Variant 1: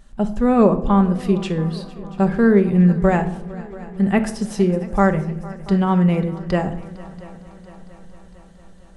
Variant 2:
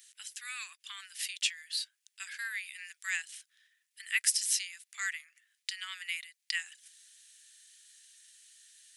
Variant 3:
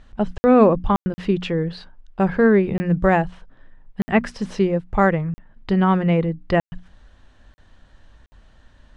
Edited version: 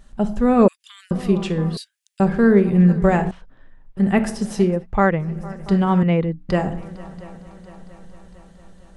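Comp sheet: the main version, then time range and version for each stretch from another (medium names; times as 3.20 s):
1
0.68–1.11 s: from 2
1.77–2.20 s: from 2
3.31–3.97 s: from 3
4.75–5.28 s: from 3, crossfade 0.24 s
6.03–6.49 s: from 3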